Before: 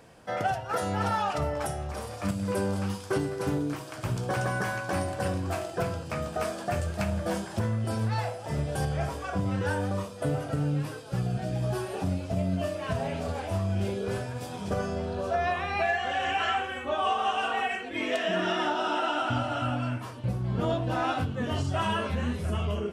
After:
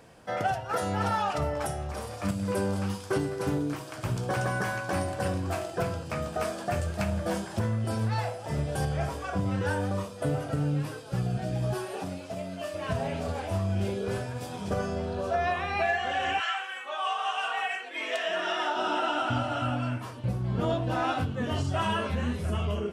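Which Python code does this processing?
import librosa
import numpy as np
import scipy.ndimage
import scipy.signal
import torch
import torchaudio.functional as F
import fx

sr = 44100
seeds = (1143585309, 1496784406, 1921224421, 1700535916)

y = fx.highpass(x, sr, hz=fx.line((11.73, 230.0), (12.73, 820.0)), slope=6, at=(11.73, 12.73), fade=0.02)
y = fx.highpass(y, sr, hz=fx.line((16.39, 1200.0), (18.75, 470.0)), slope=12, at=(16.39, 18.75), fade=0.02)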